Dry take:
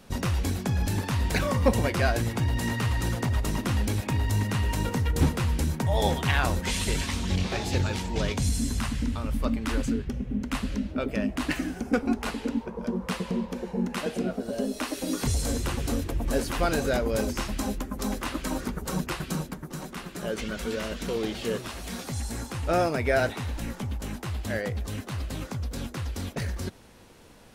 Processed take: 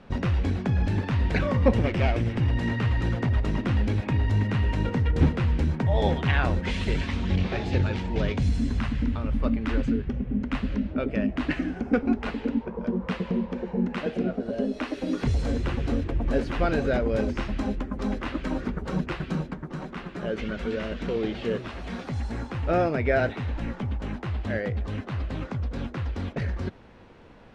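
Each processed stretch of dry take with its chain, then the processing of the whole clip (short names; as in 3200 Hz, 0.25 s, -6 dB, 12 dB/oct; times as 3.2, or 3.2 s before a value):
1.76–2.51 minimum comb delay 0.37 ms + mismatched tape noise reduction encoder only
whole clip: dynamic EQ 1000 Hz, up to -5 dB, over -42 dBFS, Q 1.3; LPF 2500 Hz 12 dB/oct; gain +2.5 dB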